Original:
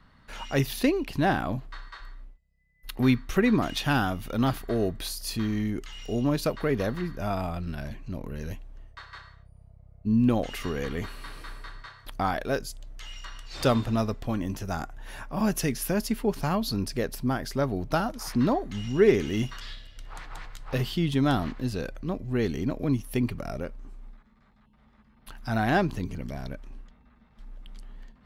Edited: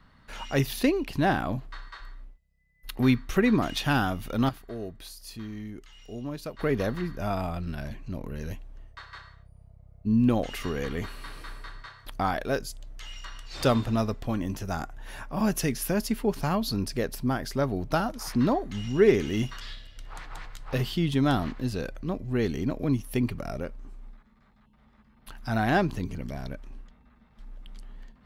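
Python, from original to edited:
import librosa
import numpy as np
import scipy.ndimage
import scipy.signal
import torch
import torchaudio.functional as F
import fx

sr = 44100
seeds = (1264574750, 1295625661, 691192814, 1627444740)

y = fx.edit(x, sr, fx.clip_gain(start_s=4.49, length_s=2.1, db=-10.0), tone=tone)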